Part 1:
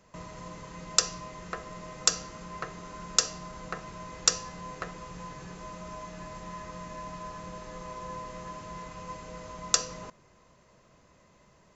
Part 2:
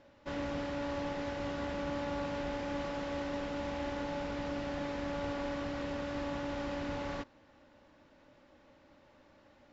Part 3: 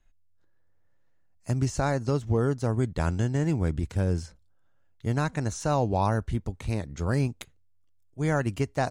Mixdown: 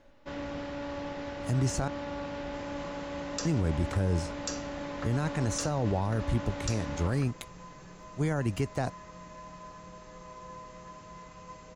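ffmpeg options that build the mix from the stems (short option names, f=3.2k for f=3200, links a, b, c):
-filter_complex "[0:a]adelay=2400,volume=-6dB[a];[1:a]volume=-0.5dB[b];[2:a]acrossover=split=440[c][d];[d]acompressor=threshold=-28dB:ratio=6[e];[c][e]amix=inputs=2:normalize=0,volume=1.5dB,asplit=3[f][g][h];[f]atrim=end=1.88,asetpts=PTS-STARTPTS,afade=t=out:st=1.876:d=0.004:c=hsin[i];[g]atrim=start=1.88:end=3.45,asetpts=PTS-STARTPTS,volume=0[j];[h]atrim=start=3.45,asetpts=PTS-STARTPTS,afade=t=in:d=0.004:c=hsin[k];[i][j][k]concat=n=3:v=0:a=1[l];[a][b][l]amix=inputs=3:normalize=0,alimiter=limit=-19.5dB:level=0:latency=1:release=18"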